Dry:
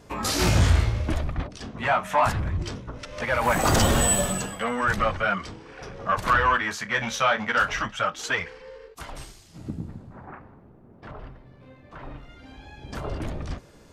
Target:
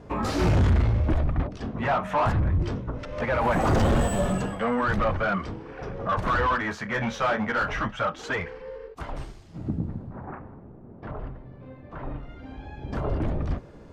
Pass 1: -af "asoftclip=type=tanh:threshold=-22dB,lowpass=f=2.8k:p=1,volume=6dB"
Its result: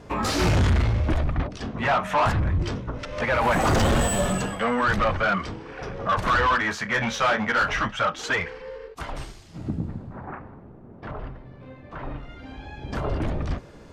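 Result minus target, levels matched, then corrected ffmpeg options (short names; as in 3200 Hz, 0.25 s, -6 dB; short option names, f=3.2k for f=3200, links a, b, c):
2000 Hz band +3.0 dB
-af "asoftclip=type=tanh:threshold=-22dB,lowpass=f=940:p=1,volume=6dB"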